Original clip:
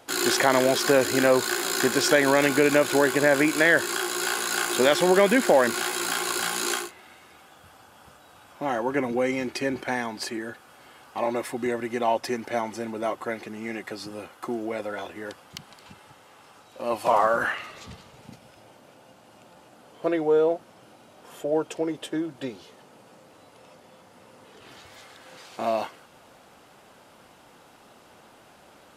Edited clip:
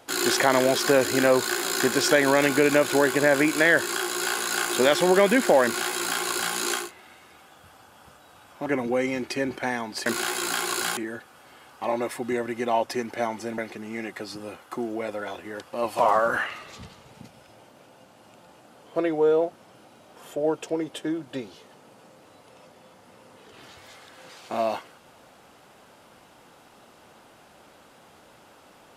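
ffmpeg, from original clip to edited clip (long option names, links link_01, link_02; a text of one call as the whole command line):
ffmpeg -i in.wav -filter_complex "[0:a]asplit=6[link_01][link_02][link_03][link_04][link_05][link_06];[link_01]atrim=end=8.662[link_07];[link_02]atrim=start=8.908:end=10.312[link_08];[link_03]atrim=start=5.638:end=6.552[link_09];[link_04]atrim=start=10.308:end=12.922[link_10];[link_05]atrim=start=13.288:end=15.442[link_11];[link_06]atrim=start=16.808[link_12];[link_07][link_08]acrossfade=duration=0.004:curve1=hsin:curve2=hsin[link_13];[link_13][link_09]acrossfade=duration=0.004:curve1=hsin:curve2=hsin[link_14];[link_14][link_10]acrossfade=duration=0.004:curve1=hsin:curve2=hsin[link_15];[link_15][link_11]acrossfade=duration=0.004:curve1=hsin:curve2=hsin[link_16];[link_16][link_12]acrossfade=duration=0.004:curve1=hsin:curve2=hsin" out.wav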